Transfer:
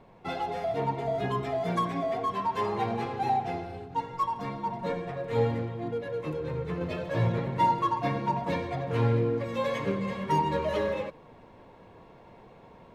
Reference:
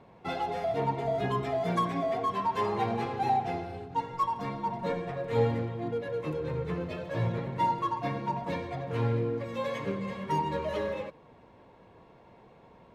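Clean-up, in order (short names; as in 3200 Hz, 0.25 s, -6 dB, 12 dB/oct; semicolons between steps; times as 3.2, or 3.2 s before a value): expander -44 dBFS, range -21 dB; gain correction -3.5 dB, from 6.81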